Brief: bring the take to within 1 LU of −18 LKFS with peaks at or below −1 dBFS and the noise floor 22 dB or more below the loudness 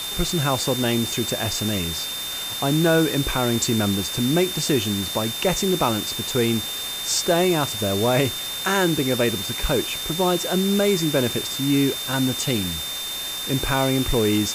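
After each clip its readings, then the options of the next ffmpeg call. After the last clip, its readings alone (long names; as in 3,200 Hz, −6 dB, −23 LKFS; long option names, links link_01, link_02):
interfering tone 3,600 Hz; level of the tone −29 dBFS; background noise floor −30 dBFS; target noise floor −44 dBFS; integrated loudness −21.5 LKFS; sample peak −7.0 dBFS; target loudness −18.0 LKFS
→ -af "bandreject=frequency=3600:width=30"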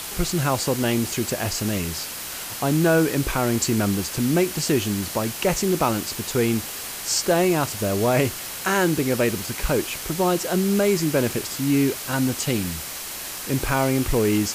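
interfering tone none found; background noise floor −33 dBFS; target noise floor −45 dBFS
→ -af "afftdn=noise_reduction=12:noise_floor=-33"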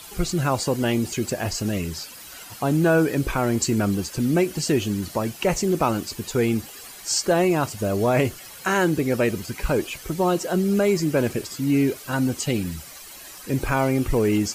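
background noise floor −42 dBFS; target noise floor −45 dBFS
→ -af "afftdn=noise_reduction=6:noise_floor=-42"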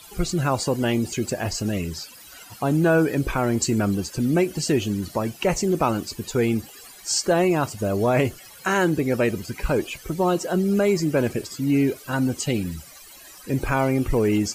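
background noise floor −45 dBFS; integrated loudness −23.0 LKFS; sample peak −8.0 dBFS; target loudness −18.0 LKFS
→ -af "volume=5dB"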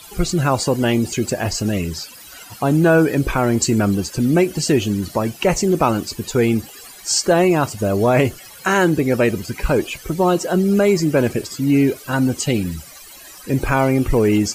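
integrated loudness −18.0 LKFS; sample peak −3.0 dBFS; background noise floor −40 dBFS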